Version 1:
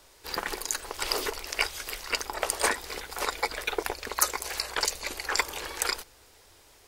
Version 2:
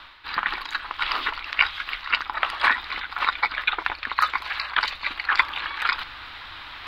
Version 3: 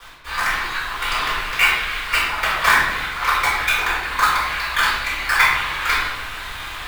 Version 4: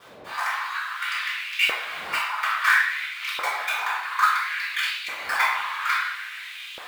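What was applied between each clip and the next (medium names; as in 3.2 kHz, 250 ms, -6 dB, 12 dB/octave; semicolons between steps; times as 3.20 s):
FFT filter 300 Hz 0 dB, 430 Hz -13 dB, 1.2 kHz +14 dB, 2 kHz +11 dB, 3.9 kHz +10 dB, 6.3 kHz -22 dB, 9.5 kHz -26 dB, 14 kHz -19 dB; reverse; upward compressor, threshold -23 dBFS; reverse; trim -2.5 dB
in parallel at -6 dB: companded quantiser 2-bit; on the sum: reverberation RT60 1.0 s, pre-delay 3 ms, DRR -13.5 dB; trim -17.5 dB
wind noise 82 Hz -22 dBFS; LFO high-pass saw up 0.59 Hz 500–3000 Hz; trim -9 dB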